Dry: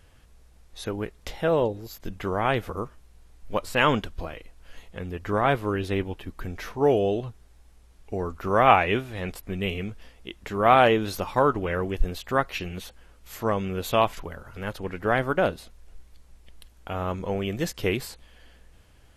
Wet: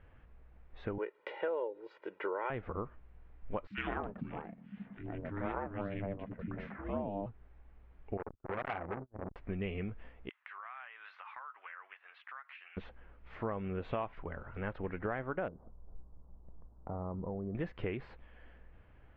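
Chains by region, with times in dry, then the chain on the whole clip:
0:00.98–0:02.50: high-pass filter 310 Hz 24 dB per octave + comb filter 2.1 ms, depth 81%
0:03.67–0:07.26: three-band delay without the direct sound highs, lows, mids 30/120 ms, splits 190/1,700 Hz + ring modulation 200 Hz
0:08.17–0:09.36: noise gate −35 dBFS, range −39 dB + Gaussian smoothing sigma 8.4 samples + saturating transformer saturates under 3,300 Hz
0:10.29–0:12.77: high-pass filter 1,200 Hz 24 dB per octave + high-frequency loss of the air 130 metres + downward compressor 12 to 1, threshold −39 dBFS
0:15.48–0:17.55: Butterworth low-pass 1,100 Hz + parametric band 160 Hz +5 dB 1.1 octaves + downward compressor 3 to 1, threshold −33 dBFS
whole clip: low-pass filter 2,300 Hz 24 dB per octave; downward compressor 6 to 1, threshold −30 dBFS; level −3.5 dB

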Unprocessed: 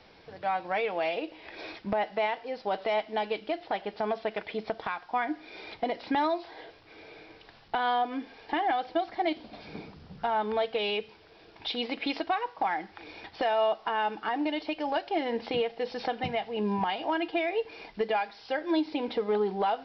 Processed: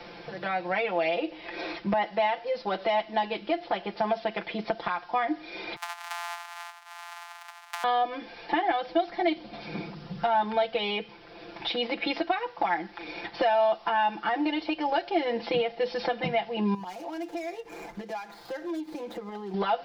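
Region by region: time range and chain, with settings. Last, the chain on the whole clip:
0:05.76–0:07.84: samples sorted by size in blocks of 256 samples + Butterworth high-pass 720 Hz 96 dB per octave + downward compressor, threshold −40 dBFS
0:16.74–0:19.54: running median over 15 samples + downward compressor 2.5 to 1, threshold −46 dBFS
whole clip: comb filter 5.8 ms, depth 96%; multiband upward and downward compressor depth 40%

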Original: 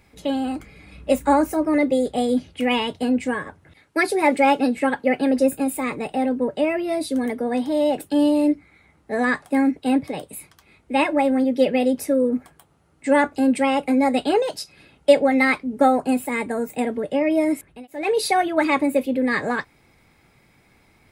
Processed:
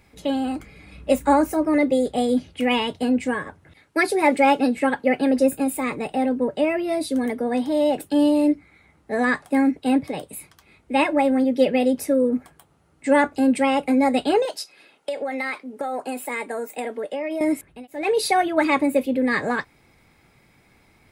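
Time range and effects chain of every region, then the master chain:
0:14.45–0:17.41: high-pass filter 410 Hz + downward compressor 12 to 1, threshold −23 dBFS
whole clip: no processing

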